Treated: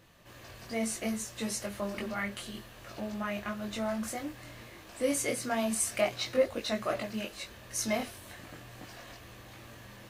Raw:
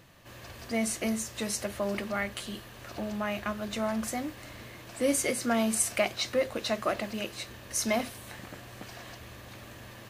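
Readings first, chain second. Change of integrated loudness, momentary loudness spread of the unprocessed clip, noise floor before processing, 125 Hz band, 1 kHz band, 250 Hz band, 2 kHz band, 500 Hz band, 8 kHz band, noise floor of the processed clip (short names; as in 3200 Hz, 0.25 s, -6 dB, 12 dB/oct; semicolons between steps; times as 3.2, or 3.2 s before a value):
-2.5 dB, 18 LU, -48 dBFS, -2.5 dB, -3.0 dB, -3.0 dB, -3.0 dB, -1.5 dB, -3.0 dB, -51 dBFS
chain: chorus voices 4, 0.59 Hz, delay 21 ms, depth 3.5 ms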